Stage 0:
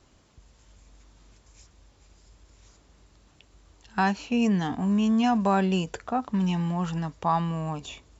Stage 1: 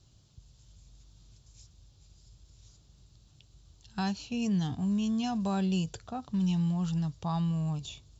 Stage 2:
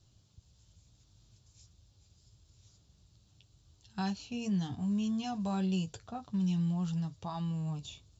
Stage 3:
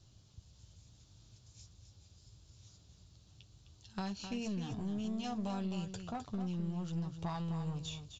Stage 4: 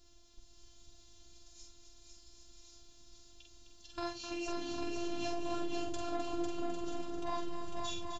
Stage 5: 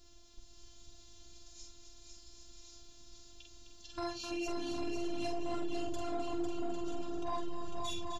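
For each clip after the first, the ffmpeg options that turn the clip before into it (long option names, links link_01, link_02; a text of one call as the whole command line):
ffmpeg -i in.wav -af "equalizer=frequency=125:width_type=o:width=1:gain=11,equalizer=frequency=250:width_type=o:width=1:gain=-7,equalizer=frequency=500:width_type=o:width=1:gain=-6,equalizer=frequency=1000:width_type=o:width=1:gain=-7,equalizer=frequency=2000:width_type=o:width=1:gain=-12,equalizer=frequency=4000:width_type=o:width=1:gain=6,volume=-3dB" out.wav
ffmpeg -i in.wav -af "flanger=delay=9.1:depth=2.4:regen=-43:speed=0.82:shape=triangular" out.wav
ffmpeg -i in.wav -af "acompressor=threshold=-38dB:ratio=6,aresample=16000,aeval=exprs='clip(val(0),-1,0.00841)':channel_layout=same,aresample=44100,aecho=1:1:258:0.355,volume=3dB" out.wav
ffmpeg -i in.wav -filter_complex "[0:a]asplit=2[link_01][link_02];[link_02]adelay=47,volume=-4dB[link_03];[link_01][link_03]amix=inputs=2:normalize=0,aecho=1:1:500|800|980|1088|1153:0.631|0.398|0.251|0.158|0.1,afftfilt=real='hypot(re,im)*cos(PI*b)':imag='0':win_size=512:overlap=0.75,volume=5dB" out.wav
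ffmpeg -i in.wav -af "asoftclip=type=tanh:threshold=-29.5dB,volume=3dB" out.wav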